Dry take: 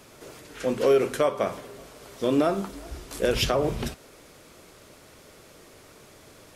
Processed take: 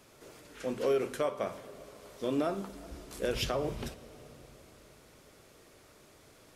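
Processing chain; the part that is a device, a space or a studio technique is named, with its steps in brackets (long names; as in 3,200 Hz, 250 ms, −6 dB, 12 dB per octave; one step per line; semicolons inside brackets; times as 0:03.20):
compressed reverb return (on a send at −7.5 dB: convolution reverb RT60 2.4 s, pre-delay 20 ms + downward compressor, threshold −32 dBFS, peak gain reduction 14.5 dB)
on the sum: level −8.5 dB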